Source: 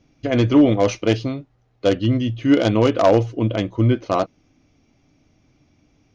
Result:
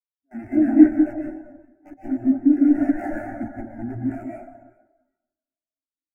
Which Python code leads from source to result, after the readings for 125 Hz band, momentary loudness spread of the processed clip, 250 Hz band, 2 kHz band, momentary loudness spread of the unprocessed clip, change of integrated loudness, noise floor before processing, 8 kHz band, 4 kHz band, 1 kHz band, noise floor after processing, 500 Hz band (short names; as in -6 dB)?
-18.5 dB, 19 LU, +0.5 dB, -8.5 dB, 8 LU, -1.0 dB, -62 dBFS, n/a, under -40 dB, -11.5 dB, under -85 dBFS, -13.0 dB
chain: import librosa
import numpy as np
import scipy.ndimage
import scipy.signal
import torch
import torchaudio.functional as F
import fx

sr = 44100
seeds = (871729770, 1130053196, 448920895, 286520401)

p1 = fx.self_delay(x, sr, depth_ms=0.45)
p2 = scipy.signal.sosfilt(scipy.signal.butter(2, 4200.0, 'lowpass', fs=sr, output='sos'), p1)
p3 = fx.peak_eq(p2, sr, hz=1500.0, db=8.0, octaves=0.58)
p4 = fx.level_steps(p3, sr, step_db=20)
p5 = (np.mod(10.0 ** (14.5 / 20.0) * p4 + 1.0, 2.0) - 1.0) / 10.0 ** (14.5 / 20.0)
p6 = fx.vibrato(p5, sr, rate_hz=2.1, depth_cents=81.0)
p7 = fx.fixed_phaser(p6, sr, hz=720.0, stages=8)
p8 = p7 + fx.echo_alternate(p7, sr, ms=200, hz=920.0, feedback_pct=58, wet_db=-6.5, dry=0)
p9 = fx.rev_plate(p8, sr, seeds[0], rt60_s=2.3, hf_ratio=0.55, predelay_ms=105, drr_db=-3.0)
p10 = fx.spectral_expand(p9, sr, expansion=2.5)
y = F.gain(torch.from_numpy(p10), 5.0).numpy()